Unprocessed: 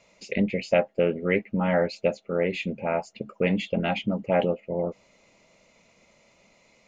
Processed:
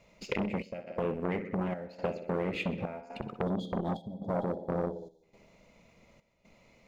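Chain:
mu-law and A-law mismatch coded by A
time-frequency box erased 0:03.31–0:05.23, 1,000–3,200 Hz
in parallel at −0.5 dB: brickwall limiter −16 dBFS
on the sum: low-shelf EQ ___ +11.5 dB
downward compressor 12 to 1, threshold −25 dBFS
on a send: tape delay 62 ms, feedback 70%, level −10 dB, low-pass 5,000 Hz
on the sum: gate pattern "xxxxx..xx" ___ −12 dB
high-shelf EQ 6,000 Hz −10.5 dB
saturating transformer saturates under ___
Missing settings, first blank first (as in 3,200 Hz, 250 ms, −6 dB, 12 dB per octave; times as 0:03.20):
180 Hz, 121 BPM, 1,100 Hz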